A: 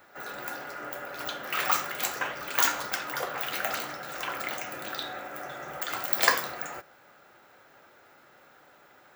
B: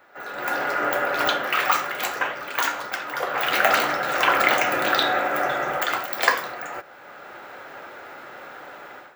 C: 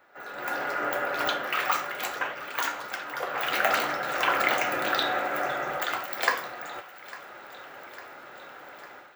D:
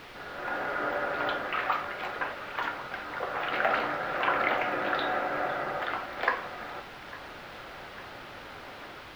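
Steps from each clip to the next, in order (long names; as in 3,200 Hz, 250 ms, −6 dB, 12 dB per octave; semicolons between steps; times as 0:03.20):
automatic gain control gain up to 15 dB; bass and treble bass −7 dB, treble −9 dB; level +2.5 dB
feedback echo with a high-pass in the loop 852 ms, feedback 66%, high-pass 640 Hz, level −18 dB; level −5.5 dB
bit-depth reduction 6 bits, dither triangular; high-frequency loss of the air 360 metres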